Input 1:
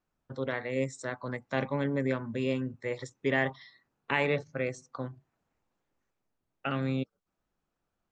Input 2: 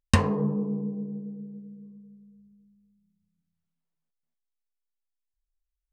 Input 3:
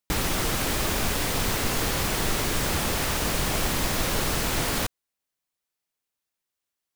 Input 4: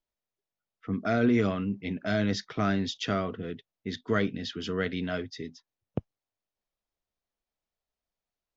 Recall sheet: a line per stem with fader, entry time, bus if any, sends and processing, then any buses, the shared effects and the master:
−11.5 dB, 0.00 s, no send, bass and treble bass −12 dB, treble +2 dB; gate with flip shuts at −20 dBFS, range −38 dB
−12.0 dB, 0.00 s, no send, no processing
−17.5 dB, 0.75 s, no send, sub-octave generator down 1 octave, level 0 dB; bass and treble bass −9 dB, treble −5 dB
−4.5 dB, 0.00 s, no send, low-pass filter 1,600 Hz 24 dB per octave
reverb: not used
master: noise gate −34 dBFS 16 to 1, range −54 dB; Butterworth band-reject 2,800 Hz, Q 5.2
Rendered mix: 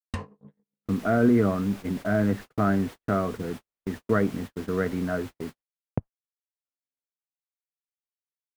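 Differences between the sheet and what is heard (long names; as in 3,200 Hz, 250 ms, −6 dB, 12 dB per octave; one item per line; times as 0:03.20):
stem 1 −11.5 dB → −23.5 dB
stem 4 −4.5 dB → +4.0 dB
master: missing Butterworth band-reject 2,800 Hz, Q 5.2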